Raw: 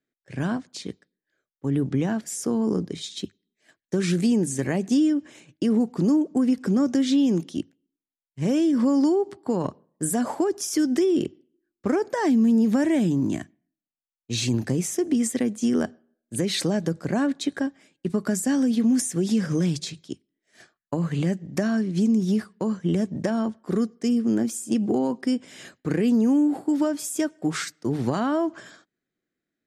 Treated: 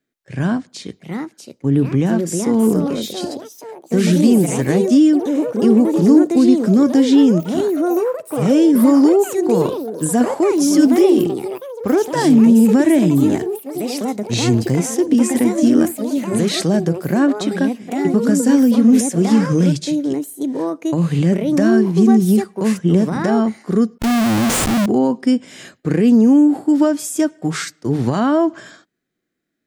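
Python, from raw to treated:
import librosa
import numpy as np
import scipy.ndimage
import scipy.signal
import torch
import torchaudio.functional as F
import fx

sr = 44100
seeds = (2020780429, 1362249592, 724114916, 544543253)

y = fx.echo_pitch(x, sr, ms=795, semitones=4, count=3, db_per_echo=-6.0)
y = fx.schmitt(y, sr, flips_db=-34.5, at=(23.98, 24.86))
y = fx.hpss(y, sr, part='harmonic', gain_db=6)
y = y * 10.0 ** (3.0 / 20.0)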